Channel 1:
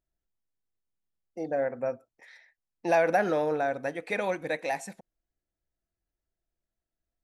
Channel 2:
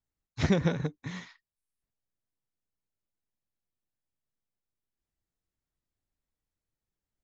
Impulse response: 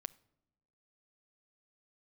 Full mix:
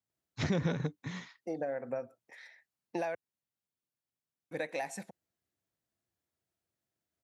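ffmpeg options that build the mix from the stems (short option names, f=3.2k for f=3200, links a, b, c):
-filter_complex "[0:a]acompressor=threshold=-32dB:ratio=16,adelay=100,volume=0dB,asplit=3[a][b][c];[a]atrim=end=3.15,asetpts=PTS-STARTPTS,afade=t=out:st=3.146:d=0.004:c=hsin[d];[b]atrim=start=3.15:end=4.51,asetpts=PTS-STARTPTS,volume=0[e];[c]atrim=start=4.51,asetpts=PTS-STARTPTS,afade=t=in:d=0.004:c=hsin[f];[d][e][f]concat=n=3:v=0:a=1[g];[1:a]alimiter=limit=-19.5dB:level=0:latency=1:release=25,volume=-2dB[h];[g][h]amix=inputs=2:normalize=0,highpass=f=89:w=0.5412,highpass=f=89:w=1.3066"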